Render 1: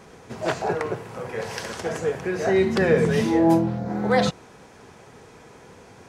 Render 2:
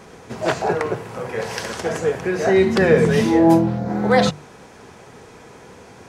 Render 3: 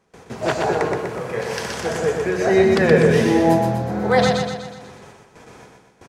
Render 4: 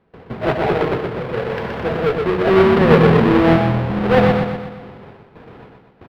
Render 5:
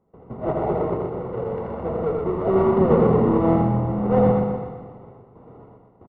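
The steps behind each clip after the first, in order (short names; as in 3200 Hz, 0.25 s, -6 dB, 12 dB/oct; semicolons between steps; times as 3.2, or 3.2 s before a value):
notches 50/100/150 Hz; gain +4.5 dB
gate with hold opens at -32 dBFS; on a send: feedback echo 0.123 s, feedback 52%, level -4 dB; on the sum: gain -1 dB
half-waves squared off; air absorption 410 m
polynomial smoothing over 65 samples; on a send: tapped delay 83/396 ms -4/-15.5 dB; on the sum: gain -6 dB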